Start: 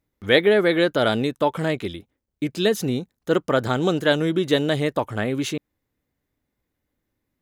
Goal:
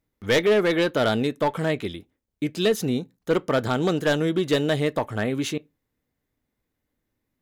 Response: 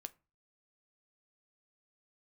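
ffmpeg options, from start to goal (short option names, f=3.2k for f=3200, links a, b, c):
-filter_complex "[0:a]asoftclip=type=hard:threshold=-14dB,asplit=2[a][b];[1:a]atrim=start_sample=2205,asetrate=70560,aresample=44100[c];[b][c]afir=irnorm=-1:irlink=0,volume=12dB[d];[a][d]amix=inputs=2:normalize=0,volume=-8.5dB"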